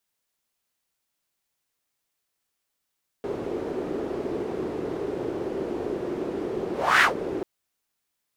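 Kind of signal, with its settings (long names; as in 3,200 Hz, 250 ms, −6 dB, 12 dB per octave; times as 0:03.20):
pass-by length 4.19 s, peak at 0:03.78, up 0.31 s, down 0.13 s, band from 380 Hz, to 1,800 Hz, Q 3.4, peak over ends 13.5 dB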